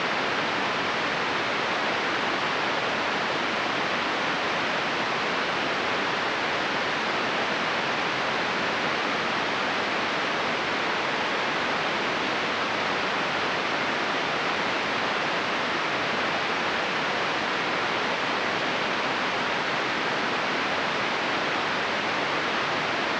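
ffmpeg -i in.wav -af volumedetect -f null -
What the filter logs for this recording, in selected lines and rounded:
mean_volume: -26.4 dB
max_volume: -12.7 dB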